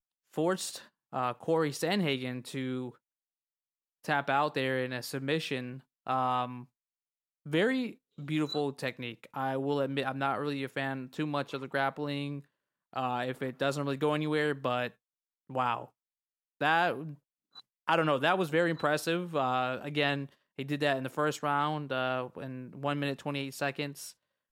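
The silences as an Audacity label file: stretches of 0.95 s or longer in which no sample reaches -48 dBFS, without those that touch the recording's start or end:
2.910000	4.040000	silence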